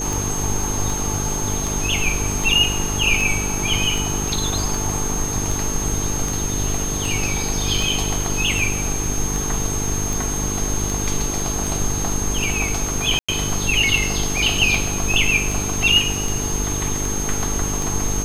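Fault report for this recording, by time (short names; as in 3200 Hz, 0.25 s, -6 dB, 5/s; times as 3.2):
buzz 50 Hz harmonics 9 -27 dBFS
tick 78 rpm
tone 6400 Hz -25 dBFS
13.19–13.29 gap 95 ms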